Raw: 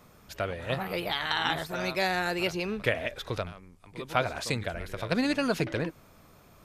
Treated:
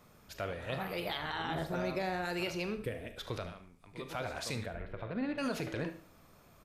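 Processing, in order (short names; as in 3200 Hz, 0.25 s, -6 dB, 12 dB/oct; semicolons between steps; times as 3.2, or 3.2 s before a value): 1.17–2.25 tilt shelf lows +6 dB, about 1100 Hz; 2.74–3.17 spectral gain 530–7600 Hz -11 dB; limiter -20 dBFS, peak gain reduction 10.5 dB; 4.66–5.38 air absorption 480 m; feedback echo 74 ms, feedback 34%, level -15.5 dB; on a send at -10 dB: reverb, pre-delay 27 ms; on the sum: gain -5 dB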